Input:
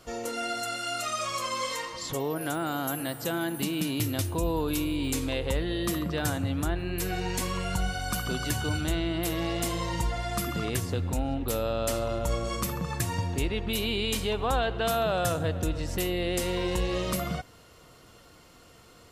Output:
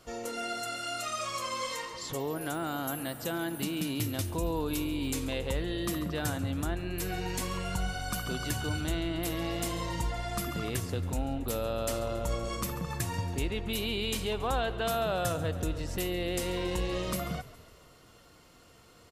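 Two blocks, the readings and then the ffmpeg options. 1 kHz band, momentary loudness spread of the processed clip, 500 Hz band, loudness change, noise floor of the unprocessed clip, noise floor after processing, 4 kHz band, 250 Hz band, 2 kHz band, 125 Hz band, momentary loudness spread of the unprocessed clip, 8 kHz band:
-3.5 dB, 4 LU, -3.5 dB, -3.5 dB, -54 dBFS, -57 dBFS, -3.5 dB, -3.5 dB, -3.5 dB, -3.5 dB, 4 LU, -3.5 dB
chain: -filter_complex "[0:a]asplit=6[a][b][c][d][e][f];[b]adelay=138,afreqshift=-37,volume=-18dB[g];[c]adelay=276,afreqshift=-74,volume=-22.7dB[h];[d]adelay=414,afreqshift=-111,volume=-27.5dB[i];[e]adelay=552,afreqshift=-148,volume=-32.2dB[j];[f]adelay=690,afreqshift=-185,volume=-36.9dB[k];[a][g][h][i][j][k]amix=inputs=6:normalize=0,volume=-3.5dB"

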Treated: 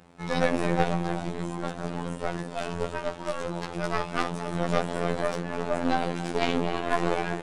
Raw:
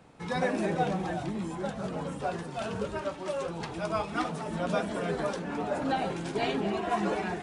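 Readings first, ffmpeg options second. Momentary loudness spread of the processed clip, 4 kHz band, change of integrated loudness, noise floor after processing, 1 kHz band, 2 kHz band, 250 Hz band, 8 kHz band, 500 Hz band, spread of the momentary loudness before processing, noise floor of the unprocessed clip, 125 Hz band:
7 LU, +3.5 dB, +2.5 dB, -39 dBFS, +2.5 dB, +3.5 dB, +2.0 dB, +3.0 dB, +2.5 dB, 6 LU, -40 dBFS, +4.0 dB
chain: -af "aecho=1:1:277:0.211,aeval=exprs='0.178*(cos(1*acos(clip(val(0)/0.178,-1,1)))-cos(1*PI/2))+0.0562*(cos(2*acos(clip(val(0)/0.178,-1,1)))-cos(2*PI/2))+0.02*(cos(3*acos(clip(val(0)/0.178,-1,1)))-cos(3*PI/2))+0.0501*(cos(4*acos(clip(val(0)/0.178,-1,1)))-cos(4*PI/2))':c=same,afftfilt=real='hypot(re,im)*cos(PI*b)':imag='0':win_size=2048:overlap=0.75,volume=8dB"

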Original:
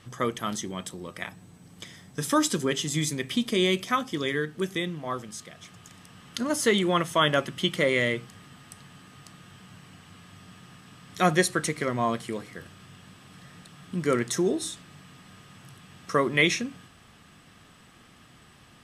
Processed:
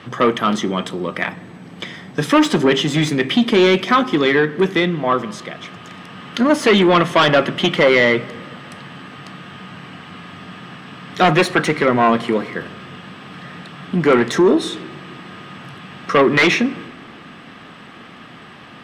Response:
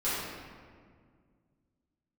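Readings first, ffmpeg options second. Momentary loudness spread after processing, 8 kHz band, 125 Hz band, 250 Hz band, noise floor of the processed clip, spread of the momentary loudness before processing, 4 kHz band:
22 LU, -1.0 dB, +9.0 dB, +12.0 dB, -40 dBFS, 16 LU, +8.5 dB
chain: -filter_complex "[0:a]aeval=exprs='0.422*sin(PI/2*3.16*val(0)/0.422)':c=same,acontrast=67,acrossover=split=150 3800:gain=0.158 1 0.1[a][b][c];[a][b][c]amix=inputs=3:normalize=0,asplit=2[d][e];[1:a]atrim=start_sample=2205[f];[e][f]afir=irnorm=-1:irlink=0,volume=-27dB[g];[d][g]amix=inputs=2:normalize=0,volume=-4dB"

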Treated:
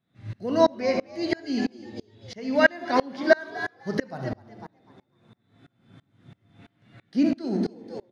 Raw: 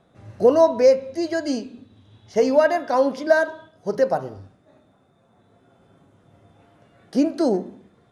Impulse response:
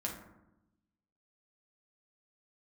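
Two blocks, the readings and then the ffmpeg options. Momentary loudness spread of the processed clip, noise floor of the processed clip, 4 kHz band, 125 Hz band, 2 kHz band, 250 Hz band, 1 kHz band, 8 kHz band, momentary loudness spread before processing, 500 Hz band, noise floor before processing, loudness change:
19 LU, -72 dBFS, +1.0 dB, +2.0 dB, +2.0 dB, -1.5 dB, -4.0 dB, n/a, 13 LU, -7.5 dB, -60 dBFS, -5.0 dB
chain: -filter_complex "[0:a]equalizer=f=125:t=o:w=1:g=11,equalizer=f=250:t=o:w=1:g=8,equalizer=f=500:t=o:w=1:g=-4,equalizer=f=2k:t=o:w=1:g=10,equalizer=f=4k:t=o:w=1:g=10,asplit=5[a][b][c][d][e];[b]adelay=250,afreqshift=85,volume=-13dB[f];[c]adelay=500,afreqshift=170,volume=-21.9dB[g];[d]adelay=750,afreqshift=255,volume=-30.7dB[h];[e]adelay=1000,afreqshift=340,volume=-39.6dB[i];[a][f][g][h][i]amix=inputs=5:normalize=0,asplit=2[j][k];[1:a]atrim=start_sample=2205,asetrate=48510,aresample=44100,adelay=65[l];[k][l]afir=irnorm=-1:irlink=0,volume=-12dB[m];[j][m]amix=inputs=2:normalize=0,acrossover=split=5700[n][o];[o]acompressor=threshold=-45dB:ratio=4:attack=1:release=60[p];[n][p]amix=inputs=2:normalize=0,aeval=exprs='val(0)*pow(10,-29*if(lt(mod(-3*n/s,1),2*abs(-3)/1000),1-mod(-3*n/s,1)/(2*abs(-3)/1000),(mod(-3*n/s,1)-2*abs(-3)/1000)/(1-2*abs(-3)/1000))/20)':c=same"

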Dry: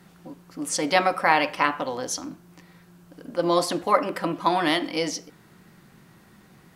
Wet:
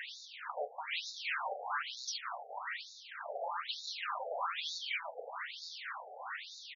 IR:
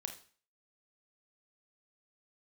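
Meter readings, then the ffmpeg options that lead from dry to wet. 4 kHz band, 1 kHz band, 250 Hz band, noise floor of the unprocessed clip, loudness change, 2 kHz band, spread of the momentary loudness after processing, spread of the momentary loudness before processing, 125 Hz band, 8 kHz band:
-8.5 dB, -15.0 dB, under -40 dB, -54 dBFS, -16.0 dB, -11.0 dB, 8 LU, 12 LU, under -40 dB, -16.0 dB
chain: -filter_complex "[0:a]afftfilt=real='re*lt(hypot(re,im),0.141)':imag='im*lt(hypot(re,im),0.141)':win_size=1024:overlap=0.75,lowpass=8.3k,equalizer=f=390:t=o:w=1.2:g=-6,asplit=2[a][b];[b]aecho=0:1:326|652|978:0.0668|0.0307|0.0141[c];[a][c]amix=inputs=2:normalize=0,acompressor=threshold=-38dB:ratio=20,asplit=2[d][e];[e]highpass=f=720:p=1,volume=26dB,asoftclip=type=tanh:threshold=-25.5dB[f];[d][f]amix=inputs=2:normalize=0,lowpass=f=3k:p=1,volume=-6dB,asoftclip=type=tanh:threshold=-35dB,acrossover=split=300[g][h];[g]acompressor=threshold=-42dB:ratio=4[i];[i][h]amix=inputs=2:normalize=0,afftfilt=real='re*between(b*sr/1024,570*pow(5100/570,0.5+0.5*sin(2*PI*1.1*pts/sr))/1.41,570*pow(5100/570,0.5+0.5*sin(2*PI*1.1*pts/sr))*1.41)':imag='im*between(b*sr/1024,570*pow(5100/570,0.5+0.5*sin(2*PI*1.1*pts/sr))/1.41,570*pow(5100/570,0.5+0.5*sin(2*PI*1.1*pts/sr))*1.41)':win_size=1024:overlap=0.75,volume=5.5dB"

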